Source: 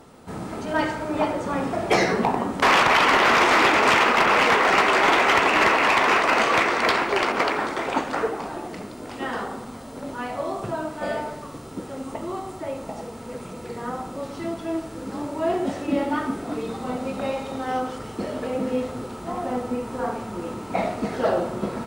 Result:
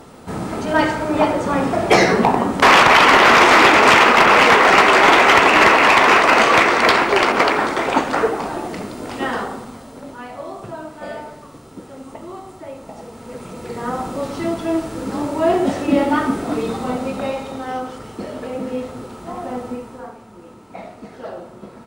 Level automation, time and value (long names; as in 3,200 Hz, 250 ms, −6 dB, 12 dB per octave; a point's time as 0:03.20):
0:09.23 +7 dB
0:10.21 −3 dB
0:12.82 −3 dB
0:14.04 +7.5 dB
0:16.69 +7.5 dB
0:17.79 0 dB
0:19.70 0 dB
0:20.16 −10 dB